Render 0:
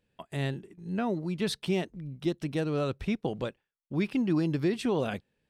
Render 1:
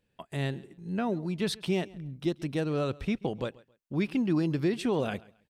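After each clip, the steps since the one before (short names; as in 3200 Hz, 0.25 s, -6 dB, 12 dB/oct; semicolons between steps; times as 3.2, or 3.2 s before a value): feedback echo 0.135 s, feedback 26%, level -22.5 dB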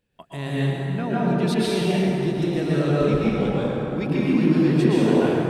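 plate-style reverb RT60 4 s, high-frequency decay 0.45×, pre-delay 0.105 s, DRR -8.5 dB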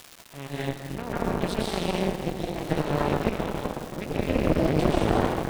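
added harmonics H 3 -19 dB, 4 -6 dB, 5 -22 dB, 7 -21 dB, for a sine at -5.5 dBFS; crackle 460/s -26 dBFS; gain -6.5 dB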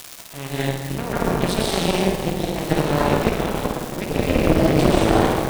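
high shelf 4700 Hz +6.5 dB; on a send: flutter echo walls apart 8.9 m, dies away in 0.41 s; on the sum: gain +5.5 dB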